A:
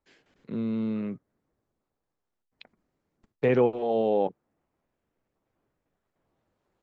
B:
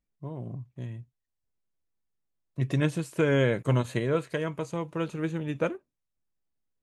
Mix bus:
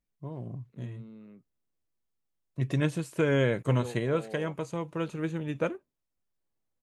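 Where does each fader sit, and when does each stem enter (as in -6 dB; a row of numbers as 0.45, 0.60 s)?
-19.0, -1.5 dB; 0.25, 0.00 s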